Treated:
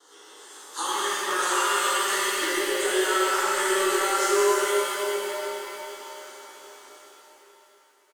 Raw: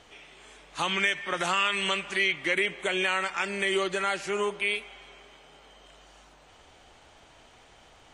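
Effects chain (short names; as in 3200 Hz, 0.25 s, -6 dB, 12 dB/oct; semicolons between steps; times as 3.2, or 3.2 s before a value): Doppler pass-by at 3.16, 5 m/s, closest 4.6 m; RIAA curve recording; gate with hold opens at -54 dBFS; HPF 110 Hz; bell 290 Hz +11 dB 2.8 oct; compressor, threshold -31 dBFS, peak gain reduction 12.5 dB; overdrive pedal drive 5 dB, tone 7100 Hz, clips at -21 dBFS; fixed phaser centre 650 Hz, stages 6; doubler 19 ms -5.5 dB; on a send: tape echo 0.763 s, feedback 49%, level -20.5 dB; on the sum: shimmer reverb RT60 3.6 s, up +7 st, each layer -8 dB, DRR -9 dB; gain +4 dB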